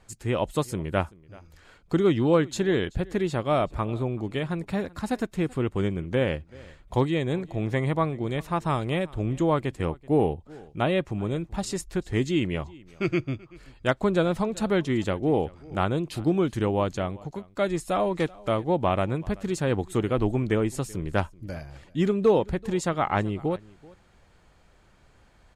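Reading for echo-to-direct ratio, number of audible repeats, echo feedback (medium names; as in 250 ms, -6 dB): -23.0 dB, 1, no regular repeats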